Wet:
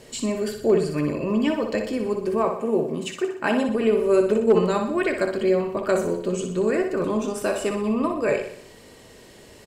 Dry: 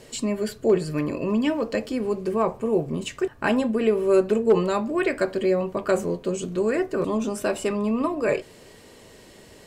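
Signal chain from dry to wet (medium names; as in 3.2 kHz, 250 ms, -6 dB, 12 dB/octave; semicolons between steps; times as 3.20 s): 2.44–3.69 s: high-pass 180 Hz 12 dB/octave; feedback delay 61 ms, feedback 50%, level -7 dB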